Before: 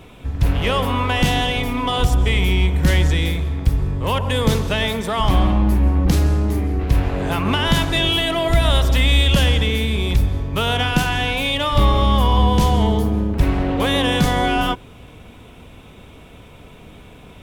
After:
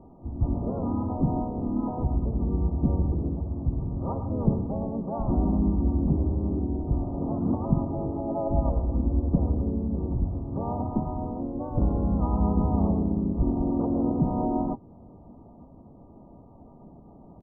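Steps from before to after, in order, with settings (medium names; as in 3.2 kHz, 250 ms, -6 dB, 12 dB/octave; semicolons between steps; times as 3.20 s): dynamic bell 760 Hz, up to -5 dB, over -35 dBFS, Q 1.6; rippled Chebyshev low-pass 980 Hz, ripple 9 dB; harmony voices -3 st -3 dB, +4 st -6 dB; trim -4 dB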